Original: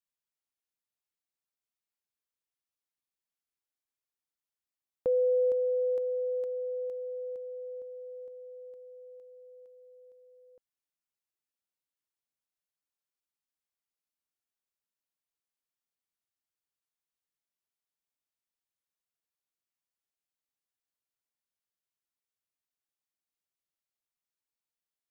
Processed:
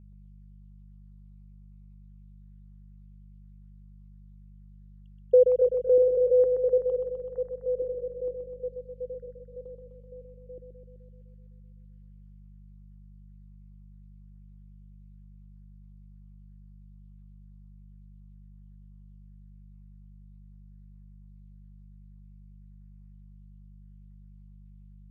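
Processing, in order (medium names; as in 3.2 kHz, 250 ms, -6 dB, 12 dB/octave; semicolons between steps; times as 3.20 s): random holes in the spectrogram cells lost 77%; peaking EQ 360 Hz +11.5 dB 0.61 oct; in parallel at +2 dB: compression, threshold -30 dBFS, peak gain reduction 8.5 dB; on the sum: mains buzz 50 Hz, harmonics 4, -55 dBFS -5 dB/octave; distance through air 320 m; thinning echo 127 ms, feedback 78%, high-pass 300 Hz, level -5 dB; trim +4.5 dB; Opus 96 kbps 48 kHz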